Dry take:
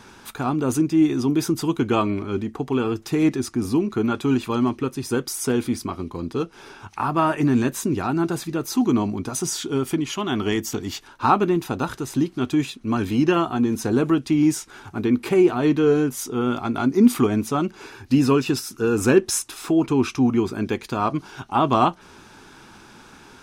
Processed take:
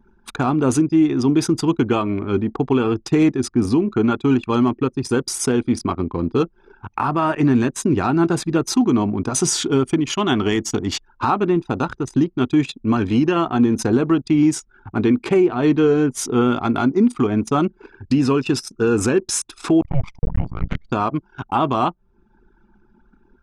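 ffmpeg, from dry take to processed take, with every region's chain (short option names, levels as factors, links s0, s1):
-filter_complex "[0:a]asettb=1/sr,asplit=3[s0][s1][s2];[s0]atrim=end=19.814[s3];[s1]atrim=start=19.81:end=20.91,asetpts=PTS-STARTPTS,afade=t=in:d=0.004:c=qsin,afade=t=out:st=1.096:d=0.004:c=qsin,lowpass=9900,afreqshift=-270,aeval=exprs='max(val(0),0)':c=same[s4];[s2]atrim=start=20.906[s5];[s3][s4]acrossfade=d=0.004:c1=hsin:c2=qsin[s6];[s6][s5]acrossfade=d=0.004:c1=qsin:c2=hsin,lowpass=f=10000:w=0.5412,lowpass=f=10000:w=1.3066,alimiter=limit=0.168:level=0:latency=1:release=461,anlmdn=3.98,volume=2.37"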